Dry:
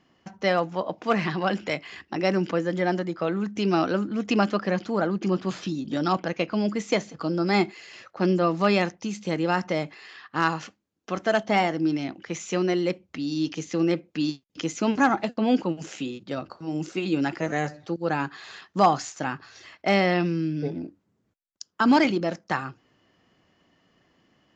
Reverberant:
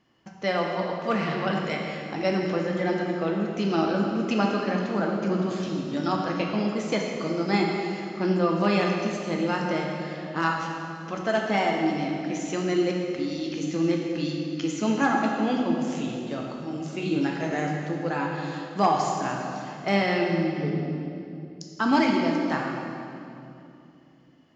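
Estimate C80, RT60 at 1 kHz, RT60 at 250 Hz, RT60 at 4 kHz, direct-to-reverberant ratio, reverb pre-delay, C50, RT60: 2.5 dB, 2.6 s, 3.6 s, 2.2 s, −0.5 dB, 8 ms, 1.5 dB, 2.8 s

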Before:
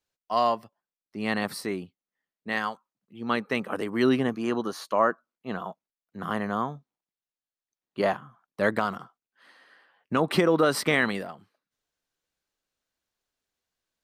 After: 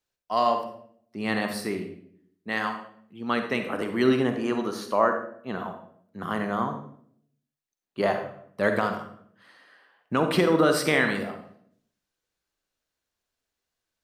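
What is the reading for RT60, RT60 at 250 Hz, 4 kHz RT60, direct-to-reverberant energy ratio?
0.65 s, 0.85 s, 0.50 s, 5.5 dB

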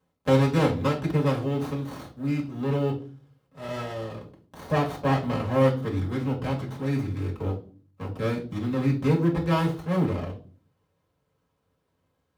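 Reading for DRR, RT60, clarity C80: −3.0 dB, 0.40 s, 16.5 dB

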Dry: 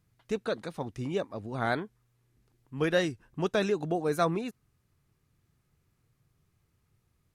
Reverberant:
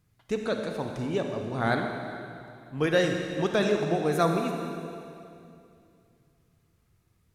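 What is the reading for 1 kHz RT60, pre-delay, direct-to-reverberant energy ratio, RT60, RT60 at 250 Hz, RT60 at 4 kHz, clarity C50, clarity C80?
2.4 s, 34 ms, 3.0 dB, 2.5 s, 2.9 s, 2.4 s, 3.5 dB, 4.5 dB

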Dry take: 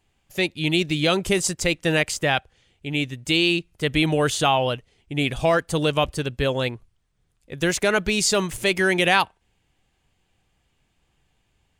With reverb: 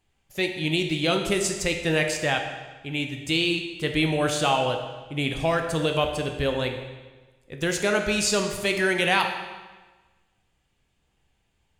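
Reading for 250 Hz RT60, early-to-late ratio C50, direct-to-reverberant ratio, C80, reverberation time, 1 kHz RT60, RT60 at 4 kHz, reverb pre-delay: 1.3 s, 6.5 dB, 4.0 dB, 8.0 dB, 1.3 s, 1.3 s, 1.2 s, 15 ms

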